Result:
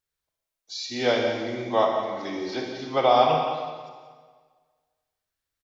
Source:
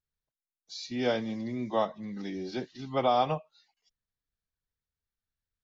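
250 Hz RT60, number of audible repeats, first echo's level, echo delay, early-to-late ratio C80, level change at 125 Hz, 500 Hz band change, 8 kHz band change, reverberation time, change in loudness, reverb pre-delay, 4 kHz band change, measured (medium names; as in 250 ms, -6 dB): 1.6 s, 1, -12.0 dB, 178 ms, 3.5 dB, +1.5 dB, +8.0 dB, no reading, 1.6 s, +7.0 dB, 32 ms, +8.5 dB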